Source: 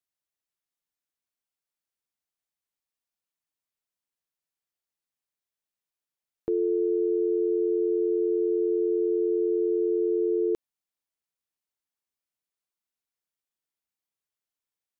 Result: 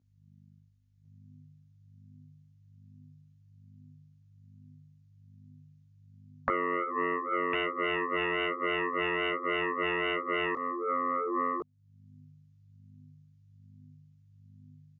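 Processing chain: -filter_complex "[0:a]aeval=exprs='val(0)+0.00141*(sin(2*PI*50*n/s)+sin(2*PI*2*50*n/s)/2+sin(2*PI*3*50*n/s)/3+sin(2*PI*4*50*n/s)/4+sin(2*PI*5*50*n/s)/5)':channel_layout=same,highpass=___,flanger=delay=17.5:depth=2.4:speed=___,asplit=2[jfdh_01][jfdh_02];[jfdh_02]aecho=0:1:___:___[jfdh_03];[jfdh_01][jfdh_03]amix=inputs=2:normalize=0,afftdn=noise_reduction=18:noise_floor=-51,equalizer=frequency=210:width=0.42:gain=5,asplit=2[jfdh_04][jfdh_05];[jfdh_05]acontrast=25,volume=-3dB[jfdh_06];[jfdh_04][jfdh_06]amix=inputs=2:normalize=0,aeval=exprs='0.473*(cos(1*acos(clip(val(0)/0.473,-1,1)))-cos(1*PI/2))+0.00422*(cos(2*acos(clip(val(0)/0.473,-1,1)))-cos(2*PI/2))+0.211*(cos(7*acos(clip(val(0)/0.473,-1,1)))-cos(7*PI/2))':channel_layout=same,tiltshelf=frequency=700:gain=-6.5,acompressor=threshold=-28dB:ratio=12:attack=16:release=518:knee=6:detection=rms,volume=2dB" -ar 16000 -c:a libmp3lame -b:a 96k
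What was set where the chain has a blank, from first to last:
110, 1.2, 1052, 0.668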